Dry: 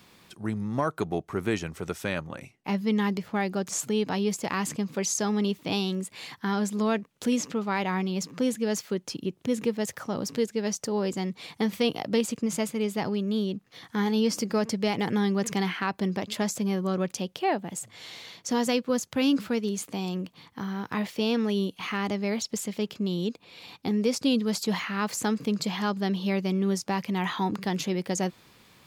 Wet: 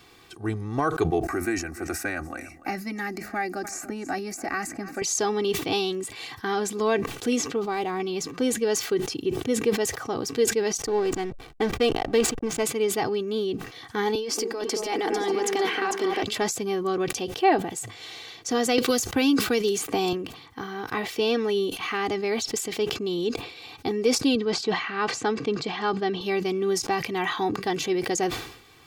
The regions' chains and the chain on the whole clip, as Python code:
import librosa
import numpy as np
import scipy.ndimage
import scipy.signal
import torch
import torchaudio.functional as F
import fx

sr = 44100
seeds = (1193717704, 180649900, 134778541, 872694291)

y = fx.chain(x, sr, fx.fixed_phaser(hz=660.0, stages=8),
    fx.echo_single(ms=291, db=-22.5),
    fx.band_squash(depth_pct=70), at=(1.23, 5.02))
y = fx.chain(y, sr, fx.median_filter(points=5),
    fx.peak_eq(hz=1900.0, db=-8.5, octaves=1.7), at=(7.56, 8.0))
y = fx.chain(y, sr, fx.high_shelf(hz=5900.0, db=-3.5),
    fx.backlash(play_db=-33.0),
    fx.notch(hz=560.0, q=18.0), at=(10.86, 12.63))
y = fx.chain(y, sr, fx.highpass(hz=260.0, slope=24),
    fx.over_compress(threshold_db=-31.0, ratio=-1.0),
    fx.echo_alternate(ms=224, hz=1100.0, feedback_pct=56, wet_db=-2.5), at=(14.15, 16.23))
y = fx.chain(y, sr, fx.high_shelf(hz=10000.0, db=6.5),
    fx.band_squash(depth_pct=100), at=(18.78, 20.13))
y = fx.chain(y, sr, fx.highpass(hz=99.0, slope=12),
    fx.air_absorb(metres=120.0), at=(24.35, 26.21))
y = fx.high_shelf(y, sr, hz=8100.0, db=-4.5)
y = y + 0.72 * np.pad(y, (int(2.6 * sr / 1000.0), 0))[:len(y)]
y = fx.sustainer(y, sr, db_per_s=83.0)
y = y * 10.0 ** (2.0 / 20.0)